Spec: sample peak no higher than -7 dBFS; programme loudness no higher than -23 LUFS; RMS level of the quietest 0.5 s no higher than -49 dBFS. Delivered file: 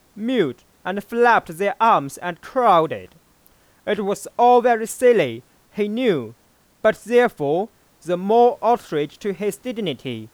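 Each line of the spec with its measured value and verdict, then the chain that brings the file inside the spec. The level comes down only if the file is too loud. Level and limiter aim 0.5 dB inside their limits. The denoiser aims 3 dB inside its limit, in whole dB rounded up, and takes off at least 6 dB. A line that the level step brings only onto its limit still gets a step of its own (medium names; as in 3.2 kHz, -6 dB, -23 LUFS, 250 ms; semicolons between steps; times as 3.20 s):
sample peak -5.0 dBFS: fail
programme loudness -19.5 LUFS: fail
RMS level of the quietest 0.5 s -58 dBFS: pass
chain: trim -4 dB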